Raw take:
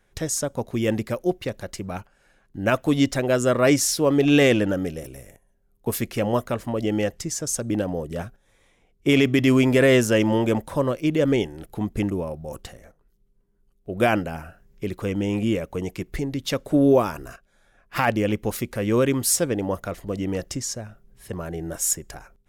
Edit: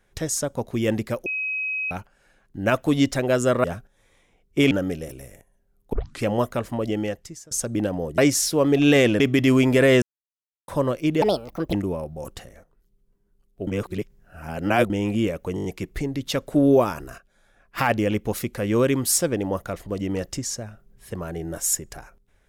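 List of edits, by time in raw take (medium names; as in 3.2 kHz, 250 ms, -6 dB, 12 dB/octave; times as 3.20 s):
1.26–1.91 s: bleep 2.54 kHz -24 dBFS
3.64–4.66 s: swap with 8.13–9.20 s
5.88 s: tape start 0.30 s
6.76–7.46 s: fade out, to -23.5 dB
10.02–10.68 s: mute
11.22–12.01 s: speed 155%
13.95–15.18 s: reverse
15.83 s: stutter 0.02 s, 6 plays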